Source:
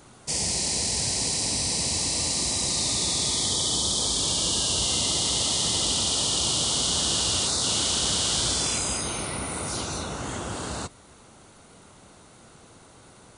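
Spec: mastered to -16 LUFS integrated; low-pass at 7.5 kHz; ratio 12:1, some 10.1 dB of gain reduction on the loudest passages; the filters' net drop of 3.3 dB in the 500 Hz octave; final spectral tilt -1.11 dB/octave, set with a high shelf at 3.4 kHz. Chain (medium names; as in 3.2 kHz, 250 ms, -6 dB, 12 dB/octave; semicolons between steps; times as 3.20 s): low-pass 7.5 kHz; peaking EQ 500 Hz -4.5 dB; treble shelf 3.4 kHz +5 dB; compression 12:1, threshold -30 dBFS; trim +15 dB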